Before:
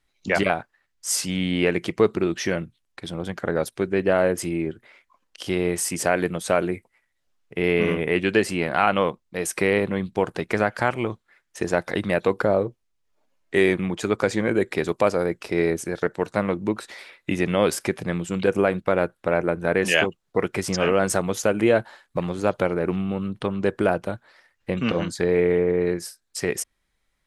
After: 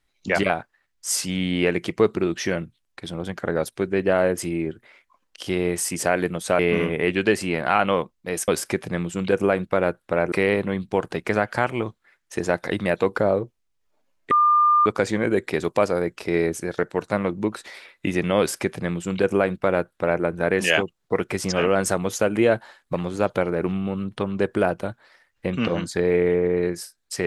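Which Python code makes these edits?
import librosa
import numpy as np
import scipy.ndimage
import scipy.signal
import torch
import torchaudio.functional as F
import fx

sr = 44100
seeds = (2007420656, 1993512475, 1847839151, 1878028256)

y = fx.edit(x, sr, fx.cut(start_s=6.59, length_s=1.08),
    fx.bleep(start_s=13.55, length_s=0.55, hz=1200.0, db=-13.5),
    fx.duplicate(start_s=17.63, length_s=1.84, to_s=9.56), tone=tone)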